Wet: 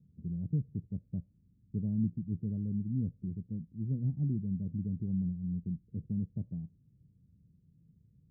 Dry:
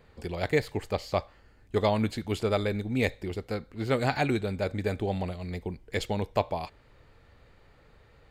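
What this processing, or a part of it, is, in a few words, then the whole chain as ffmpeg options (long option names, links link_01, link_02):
the neighbour's flat through the wall: -af "highpass=120,lowpass=frequency=200:width=0.5412,lowpass=frequency=200:width=1.3066,equalizer=frequency=170:width_type=o:width=0.51:gain=6.5,volume=1dB"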